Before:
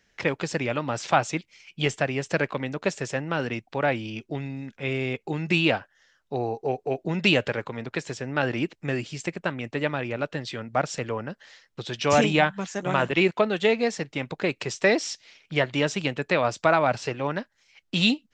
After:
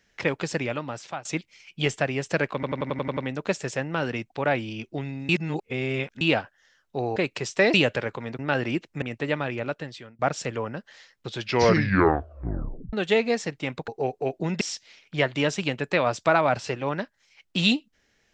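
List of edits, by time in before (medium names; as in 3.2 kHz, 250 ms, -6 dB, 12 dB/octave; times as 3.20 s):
0.56–1.25 s: fade out, to -21.5 dB
2.54 s: stutter 0.09 s, 8 plays
4.66–5.58 s: reverse
6.53–7.26 s: swap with 14.41–14.99 s
7.91–8.27 s: delete
8.90–9.55 s: delete
10.14–10.72 s: fade out linear, to -21.5 dB
11.86 s: tape stop 1.60 s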